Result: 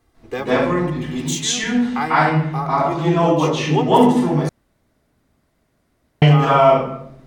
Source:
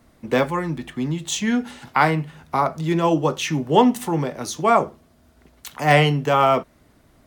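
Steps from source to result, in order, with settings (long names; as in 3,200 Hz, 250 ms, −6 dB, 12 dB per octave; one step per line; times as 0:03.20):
0:01.01–0:01.49: spectral tilt +3 dB per octave
convolution reverb RT60 0.70 s, pre-delay 138 ms, DRR −9 dB
0:04.49–0:06.22: fill with room tone
level −9 dB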